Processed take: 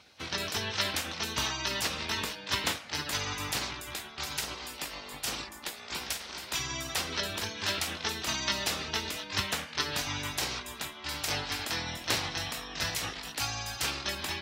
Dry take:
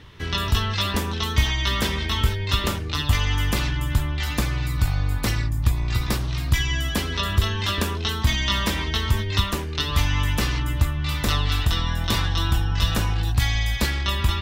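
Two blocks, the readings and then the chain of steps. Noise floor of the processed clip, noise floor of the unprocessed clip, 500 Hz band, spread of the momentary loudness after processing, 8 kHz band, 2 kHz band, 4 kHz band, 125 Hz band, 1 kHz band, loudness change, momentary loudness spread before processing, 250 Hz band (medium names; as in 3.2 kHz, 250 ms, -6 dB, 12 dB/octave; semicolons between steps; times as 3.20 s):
-46 dBFS, -29 dBFS, -7.0 dB, 7 LU, -1.0 dB, -6.0 dB, -6.0 dB, -21.0 dB, -7.5 dB, -9.0 dB, 3 LU, -12.5 dB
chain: frequency weighting A; spectral gate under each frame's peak -10 dB weak; peaking EQ 89 Hz +4 dB 1.3 oct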